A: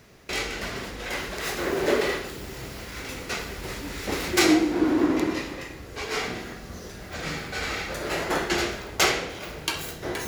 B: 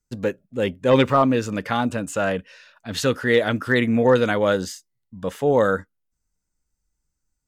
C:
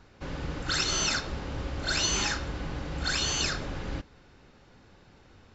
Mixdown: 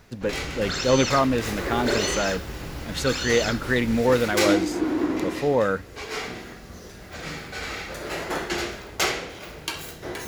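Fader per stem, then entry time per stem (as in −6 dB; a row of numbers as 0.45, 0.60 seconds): −2.5, −3.5, −1.5 decibels; 0.00, 0.00, 0.00 seconds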